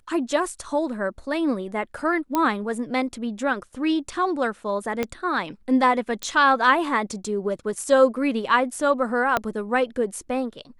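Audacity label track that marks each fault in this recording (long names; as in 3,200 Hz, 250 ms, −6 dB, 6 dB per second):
2.350000	2.350000	click −9 dBFS
5.030000	5.030000	click −11 dBFS
6.230000	6.230000	click −13 dBFS
9.370000	9.370000	click −8 dBFS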